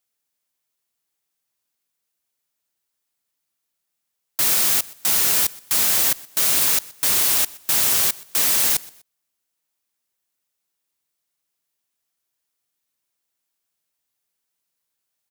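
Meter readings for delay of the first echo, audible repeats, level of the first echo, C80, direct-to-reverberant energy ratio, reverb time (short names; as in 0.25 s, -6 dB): 0.124 s, 2, -22.0 dB, none, none, none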